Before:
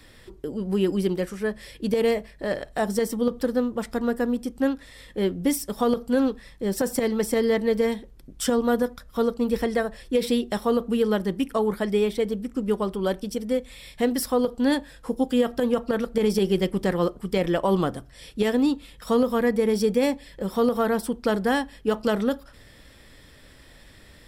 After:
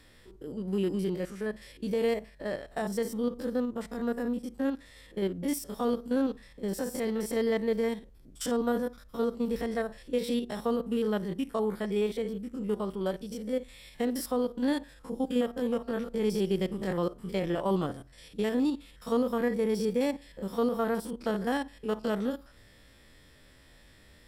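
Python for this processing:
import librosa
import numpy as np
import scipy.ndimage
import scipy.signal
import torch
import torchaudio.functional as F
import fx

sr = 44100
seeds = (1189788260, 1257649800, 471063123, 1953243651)

y = fx.spec_steps(x, sr, hold_ms=50)
y = F.gain(torch.from_numpy(y), -5.5).numpy()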